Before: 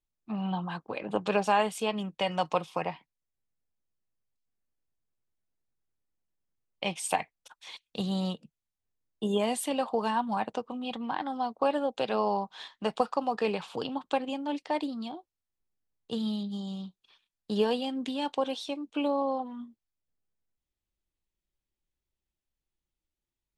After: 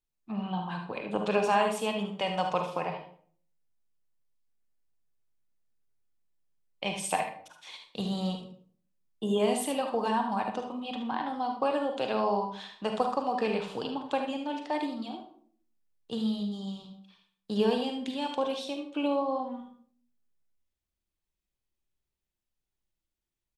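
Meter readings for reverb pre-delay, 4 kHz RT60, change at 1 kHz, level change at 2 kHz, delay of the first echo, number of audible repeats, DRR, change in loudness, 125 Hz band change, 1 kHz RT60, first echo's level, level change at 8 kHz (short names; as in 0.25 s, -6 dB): 38 ms, 0.40 s, 0.0 dB, +0.5 dB, 73 ms, 1, 3.5 dB, 0.0 dB, 0.0 dB, 0.50 s, -9.5 dB, 0.0 dB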